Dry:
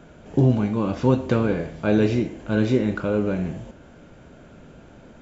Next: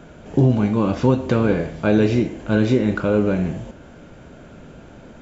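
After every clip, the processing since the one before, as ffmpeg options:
ffmpeg -i in.wav -af "alimiter=limit=-10.5dB:level=0:latency=1:release=176,volume=4.5dB" out.wav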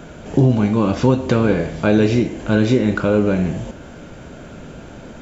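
ffmpeg -i in.wav -filter_complex "[0:a]highshelf=frequency=4300:gain=5,asplit=2[link_01][link_02];[link_02]acompressor=threshold=-25dB:ratio=6,volume=-1dB[link_03];[link_01][link_03]amix=inputs=2:normalize=0" out.wav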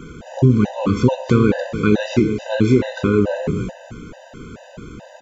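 ffmpeg -i in.wav -af "aecho=1:1:297:0.316,afftfilt=real='re*gt(sin(2*PI*2.3*pts/sr)*(1-2*mod(floor(b*sr/1024/510),2)),0)':imag='im*gt(sin(2*PI*2.3*pts/sr)*(1-2*mod(floor(b*sr/1024/510),2)),0)':win_size=1024:overlap=0.75,volume=2dB" out.wav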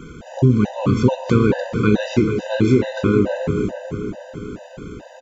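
ffmpeg -i in.wav -filter_complex "[0:a]asplit=2[link_01][link_02];[link_02]adelay=439,lowpass=frequency=2000:poles=1,volume=-8dB,asplit=2[link_03][link_04];[link_04]adelay=439,lowpass=frequency=2000:poles=1,volume=0.54,asplit=2[link_05][link_06];[link_06]adelay=439,lowpass=frequency=2000:poles=1,volume=0.54,asplit=2[link_07][link_08];[link_08]adelay=439,lowpass=frequency=2000:poles=1,volume=0.54,asplit=2[link_09][link_10];[link_10]adelay=439,lowpass=frequency=2000:poles=1,volume=0.54,asplit=2[link_11][link_12];[link_12]adelay=439,lowpass=frequency=2000:poles=1,volume=0.54[link_13];[link_01][link_03][link_05][link_07][link_09][link_11][link_13]amix=inputs=7:normalize=0,volume=-1dB" out.wav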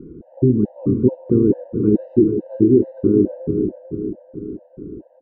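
ffmpeg -i in.wav -af "lowpass=frequency=350:width_type=q:width=3.6,volume=-5dB" out.wav

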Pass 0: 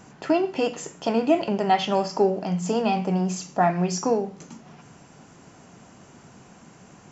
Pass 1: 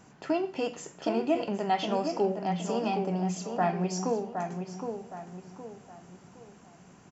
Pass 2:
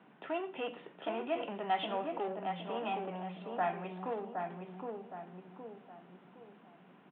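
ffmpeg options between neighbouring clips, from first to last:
ffmpeg -i in.wav -filter_complex "[0:a]asplit=2[link_01][link_02];[link_02]adelay=766,lowpass=frequency=2600:poles=1,volume=-6dB,asplit=2[link_03][link_04];[link_04]adelay=766,lowpass=frequency=2600:poles=1,volume=0.39,asplit=2[link_05][link_06];[link_06]adelay=766,lowpass=frequency=2600:poles=1,volume=0.39,asplit=2[link_07][link_08];[link_08]adelay=766,lowpass=frequency=2600:poles=1,volume=0.39,asplit=2[link_09][link_10];[link_10]adelay=766,lowpass=frequency=2600:poles=1,volume=0.39[link_11];[link_01][link_03][link_05][link_07][link_09][link_11]amix=inputs=6:normalize=0,volume=-7dB" out.wav
ffmpeg -i in.wav -filter_complex "[0:a]acrossover=split=590|1000[link_01][link_02][link_03];[link_01]asoftclip=type=tanh:threshold=-37dB[link_04];[link_04][link_02][link_03]amix=inputs=3:normalize=0,aresample=8000,aresample=44100,highpass=frequency=180:width=0.5412,highpass=frequency=180:width=1.3066,volume=-3.5dB" out.wav

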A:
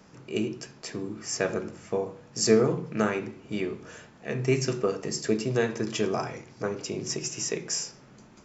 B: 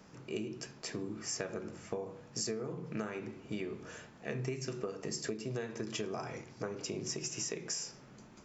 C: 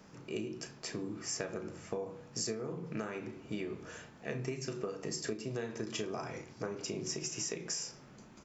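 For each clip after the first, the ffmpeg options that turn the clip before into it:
ffmpeg -i in.wav -af "acompressor=threshold=-31dB:ratio=16,volume=-3dB" out.wav
ffmpeg -i in.wav -filter_complex "[0:a]asplit=2[link_01][link_02];[link_02]adelay=35,volume=-11dB[link_03];[link_01][link_03]amix=inputs=2:normalize=0" out.wav

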